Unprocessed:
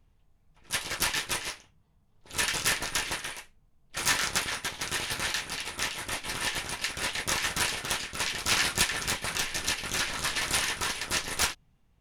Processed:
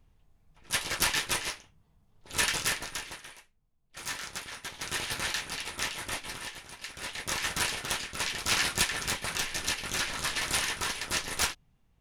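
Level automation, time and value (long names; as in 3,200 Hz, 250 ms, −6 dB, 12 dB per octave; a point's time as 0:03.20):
0:02.46 +1 dB
0:03.16 −10.5 dB
0:04.45 −10.5 dB
0:04.96 −1.5 dB
0:06.17 −1.5 dB
0:06.60 −13 dB
0:07.49 −1.5 dB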